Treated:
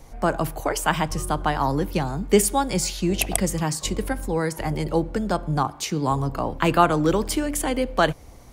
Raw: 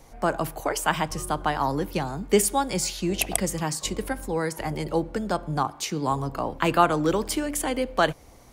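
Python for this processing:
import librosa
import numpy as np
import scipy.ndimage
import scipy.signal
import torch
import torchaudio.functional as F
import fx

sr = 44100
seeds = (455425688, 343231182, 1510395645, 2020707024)

y = fx.low_shelf(x, sr, hz=170.0, db=6.5)
y = y * 10.0 ** (1.5 / 20.0)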